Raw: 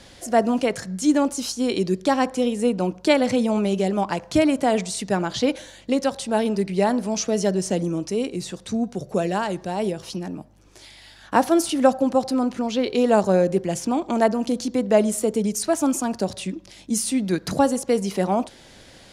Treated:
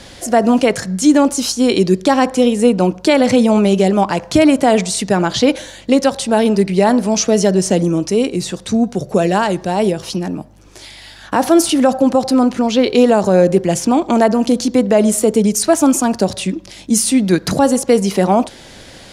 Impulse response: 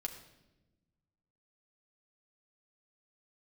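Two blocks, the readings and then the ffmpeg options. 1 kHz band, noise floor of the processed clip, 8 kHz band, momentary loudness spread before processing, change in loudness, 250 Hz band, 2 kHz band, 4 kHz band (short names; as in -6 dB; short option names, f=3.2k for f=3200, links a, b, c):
+7.0 dB, -39 dBFS, +9.5 dB, 8 LU, +8.5 dB, +9.0 dB, +7.5 dB, +9.0 dB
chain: -af "alimiter=level_in=10.5dB:limit=-1dB:release=50:level=0:latency=1,volume=-1dB"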